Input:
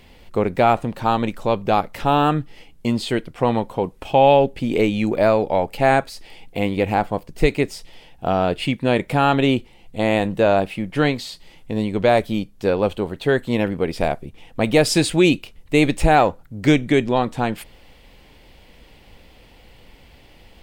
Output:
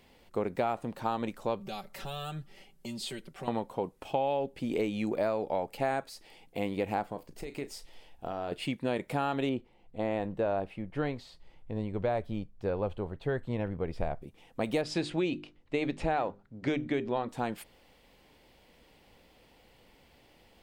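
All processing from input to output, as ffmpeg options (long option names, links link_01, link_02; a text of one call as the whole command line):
ffmpeg -i in.wav -filter_complex "[0:a]asettb=1/sr,asplit=3[link_01][link_02][link_03];[link_01]atrim=end=1.604[link_04];[link_02]atrim=start=1.6:end=3.48,asetpts=PTS-STARTPTS,afade=type=in:duration=0.004:curve=qsin,afade=type=out:start_time=1.876:duration=0.004:curve=qsin,bandreject=frequency=1000:width=14,aecho=1:1:5.2:0.91,atrim=end_sample=82908,acrossover=split=120|3000[link_05][link_06][link_07];[link_06]acompressor=threshold=-34dB:ratio=3:attack=3.2:release=140:knee=2.83:detection=peak[link_08];[link_05][link_08][link_07]amix=inputs=3:normalize=0[link_09];[link_03]atrim=start=3.476[link_10];[link_04][link_09]acrossfade=duration=0.004:curve1=hsin:curve2=qsin[link_11];[link_11][link_10]acrossfade=duration=0.004:curve1=qsin:curve2=hsin,asettb=1/sr,asplit=3[link_12][link_13][link_14];[link_12]atrim=end=7.084[link_15];[link_13]atrim=start=7.08:end=8.52,asetpts=PTS-STARTPTS,afade=type=in:duration=0.004:curve=qsin,afade=type=out:start_time=1.436:duration=0.004:curve=qsin,asubboost=boost=11.5:cutoff=57,acompressor=threshold=-21dB:ratio=12:attack=3.2:release=140:knee=1:detection=peak,asplit=2[link_16][link_17];[link_17]adelay=35,volume=-12dB[link_18];[link_16][link_18]amix=inputs=2:normalize=0,atrim=end_sample=63504[link_19];[link_14]atrim=start=8.516[link_20];[link_15][link_19]acrossfade=duration=0.004:curve1=hsin:curve2=qsin[link_21];[link_21][link_20]acrossfade=duration=0.004:curve1=qsin:curve2=hsin,asettb=1/sr,asplit=3[link_22][link_23][link_24];[link_22]atrim=end=9.494[link_25];[link_23]atrim=start=9.49:end=14.22,asetpts=PTS-STARTPTS,afade=type=in:duration=0.004:curve=qsin,afade=type=out:start_time=4.726:duration=0.004:curve=qsin,asubboost=boost=7.5:cutoff=97,lowpass=frequency=1500:poles=1[link_26];[link_24]atrim=start=14.216[link_27];[link_25][link_26]acrossfade=duration=0.004:curve1=hsin:curve2=qsin[link_28];[link_28][link_27]acrossfade=duration=0.004:curve1=qsin:curve2=hsin,asettb=1/sr,asplit=3[link_29][link_30][link_31];[link_29]atrim=end=14.814[link_32];[link_30]atrim=start=14.81:end=17.29,asetpts=PTS-STARTPTS,afade=type=in:duration=0.004:curve=qsin,afade=type=out:start_time=2.476:duration=0.004:curve=qsin,lowpass=4100,bandreject=frequency=50:width_type=h:width=6,bandreject=frequency=100:width_type=h:width=6,bandreject=frequency=150:width_type=h:width=6,bandreject=frequency=200:width_type=h:width=6,bandreject=frequency=250:width_type=h:width=6,bandreject=frequency=300:width_type=h:width=6,bandreject=frequency=350:width_type=h:width=6,bandreject=frequency=400:width_type=h:width=6[link_33];[link_31]atrim=start=17.286[link_34];[link_32][link_33]acrossfade=duration=0.004:curve1=hsin:curve2=qsin[link_35];[link_35][link_34]acrossfade=duration=0.004:curve1=qsin:curve2=hsin,lowshelf=frequency=110:gain=-11.5,acompressor=threshold=-17dB:ratio=6,equalizer=frequency=2700:width_type=o:width=1.5:gain=-3.5,volume=-8.5dB" out.wav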